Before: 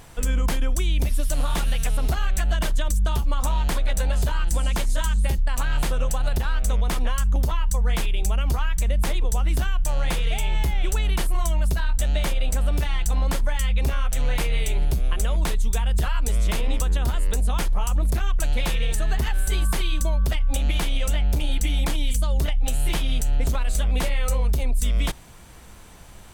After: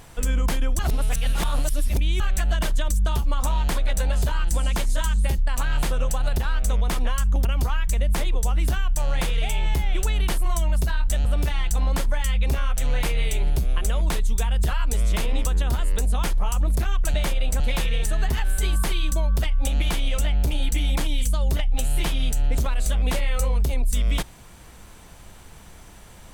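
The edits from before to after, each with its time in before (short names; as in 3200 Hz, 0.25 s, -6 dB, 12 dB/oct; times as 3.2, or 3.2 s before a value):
0.79–2.2 reverse
7.45–8.34 cut
12.14–12.6 move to 18.49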